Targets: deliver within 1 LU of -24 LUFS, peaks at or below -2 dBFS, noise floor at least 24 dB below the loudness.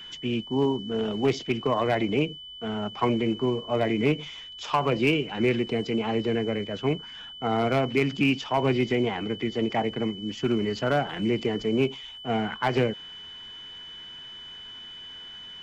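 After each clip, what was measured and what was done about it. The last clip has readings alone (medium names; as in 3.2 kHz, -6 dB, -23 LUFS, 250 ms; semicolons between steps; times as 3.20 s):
clipped samples 0.3%; clipping level -15.0 dBFS; steady tone 3 kHz; tone level -40 dBFS; loudness -26.5 LUFS; peak level -15.0 dBFS; loudness target -24.0 LUFS
-> clip repair -15 dBFS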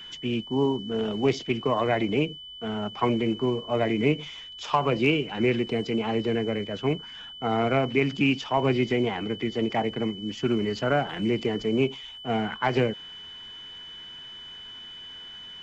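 clipped samples 0.0%; steady tone 3 kHz; tone level -40 dBFS
-> band-stop 3 kHz, Q 30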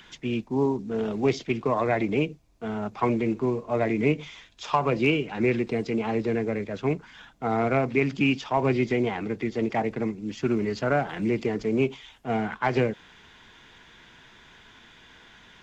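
steady tone not found; loudness -26.5 LUFS; peak level -10.0 dBFS; loudness target -24.0 LUFS
-> trim +2.5 dB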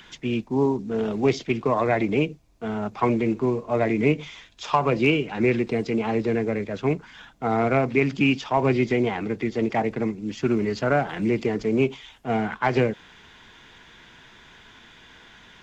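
loudness -24.0 LUFS; peak level -7.5 dBFS; noise floor -51 dBFS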